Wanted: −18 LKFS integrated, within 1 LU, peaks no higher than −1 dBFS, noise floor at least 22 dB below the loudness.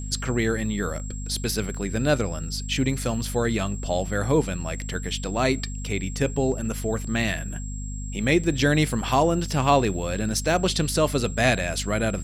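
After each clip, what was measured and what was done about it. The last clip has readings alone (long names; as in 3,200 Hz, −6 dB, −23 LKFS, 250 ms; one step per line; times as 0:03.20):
mains hum 50 Hz; hum harmonics up to 250 Hz; level of the hum −30 dBFS; interfering tone 7,600 Hz; level of the tone −40 dBFS; integrated loudness −25.0 LKFS; sample peak −6.0 dBFS; target loudness −18.0 LKFS
→ mains-hum notches 50/100/150/200/250 Hz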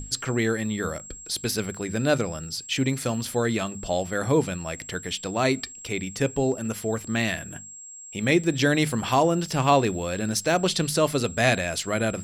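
mains hum none found; interfering tone 7,600 Hz; level of the tone −40 dBFS
→ notch filter 7,600 Hz, Q 30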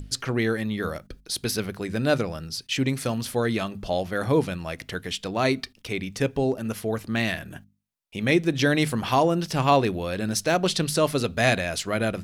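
interfering tone none found; integrated loudness −25.5 LKFS; sample peak −6.0 dBFS; target loudness −18.0 LKFS
→ level +7.5 dB
brickwall limiter −1 dBFS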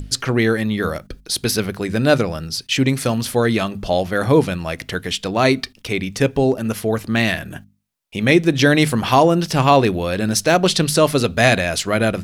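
integrated loudness −18.0 LKFS; sample peak −1.0 dBFS; background noise floor −51 dBFS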